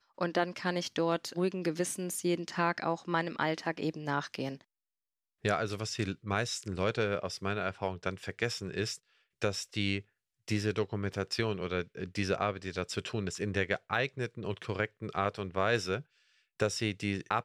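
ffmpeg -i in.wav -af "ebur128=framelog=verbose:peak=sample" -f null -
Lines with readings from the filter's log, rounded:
Integrated loudness:
  I:         -33.8 LUFS
  Threshold: -44.0 LUFS
Loudness range:
  LRA:         2.5 LU
  Threshold: -54.3 LUFS
  LRA low:   -35.3 LUFS
  LRA high:  -32.8 LUFS
Sample peak:
  Peak:      -14.2 dBFS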